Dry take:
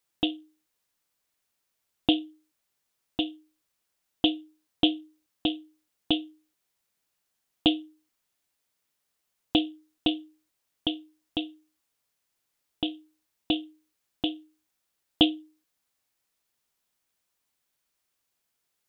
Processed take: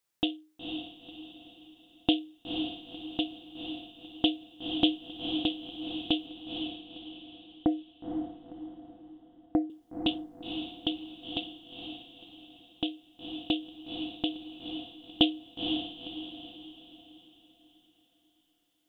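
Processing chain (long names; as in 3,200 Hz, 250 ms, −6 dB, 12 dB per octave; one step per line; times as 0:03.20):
0:06.26–0:09.70: Butterworth low-pass 2,000 Hz 96 dB per octave
feedback delay with all-pass diffusion 493 ms, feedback 42%, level −5 dB
level −2.5 dB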